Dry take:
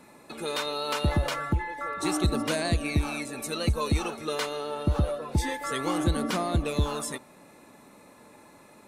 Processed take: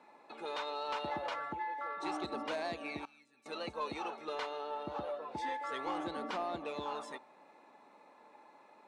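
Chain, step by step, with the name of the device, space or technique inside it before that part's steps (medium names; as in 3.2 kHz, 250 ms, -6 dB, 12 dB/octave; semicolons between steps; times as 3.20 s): intercom (band-pass 340–3800 Hz; peaking EQ 850 Hz +8 dB 0.52 oct; saturation -19 dBFS, distortion -22 dB); 3.05–3.46 s: amplifier tone stack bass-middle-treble 6-0-2; trim -8.5 dB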